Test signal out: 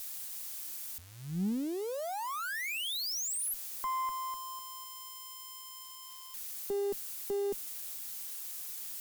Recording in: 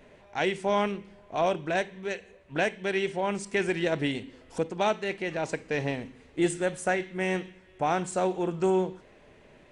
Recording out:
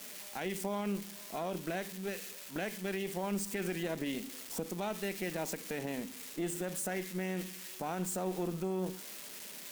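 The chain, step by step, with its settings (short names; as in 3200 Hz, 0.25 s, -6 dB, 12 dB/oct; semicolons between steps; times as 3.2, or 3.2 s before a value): switching spikes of -27.5 dBFS; modulation noise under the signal 27 dB; limiter -24 dBFS; resonant low shelf 140 Hz -10.5 dB, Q 3; added harmonics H 2 -18 dB, 6 -29 dB, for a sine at -18 dBFS; gain -6 dB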